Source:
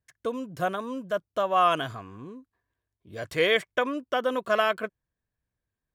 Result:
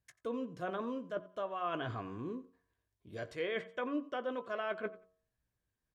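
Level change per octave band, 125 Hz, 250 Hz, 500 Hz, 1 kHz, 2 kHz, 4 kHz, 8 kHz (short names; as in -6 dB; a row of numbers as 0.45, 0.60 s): -6.0 dB, -5.5 dB, -11.0 dB, -14.0 dB, -13.5 dB, -17.0 dB, under -15 dB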